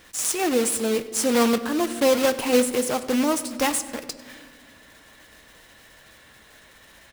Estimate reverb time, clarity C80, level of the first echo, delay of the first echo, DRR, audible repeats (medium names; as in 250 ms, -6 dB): 1.9 s, 14.0 dB, -19.0 dB, 98 ms, 10.0 dB, 1